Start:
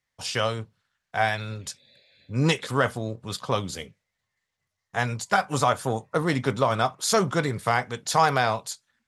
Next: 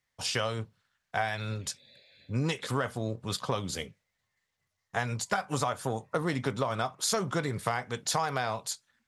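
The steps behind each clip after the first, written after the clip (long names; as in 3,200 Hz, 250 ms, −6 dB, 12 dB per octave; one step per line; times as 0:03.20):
downward compressor 6 to 1, threshold −26 dBFS, peak gain reduction 11.5 dB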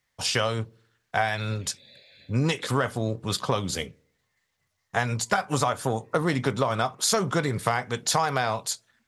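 on a send at −17.5 dB: transistor ladder low-pass 510 Hz, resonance 35% + convolution reverb, pre-delay 52 ms
on the sum: level +5.5 dB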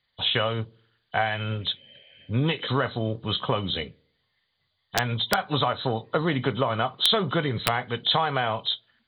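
hearing-aid frequency compression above 2,900 Hz 4 to 1
wrap-around overflow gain 8.5 dB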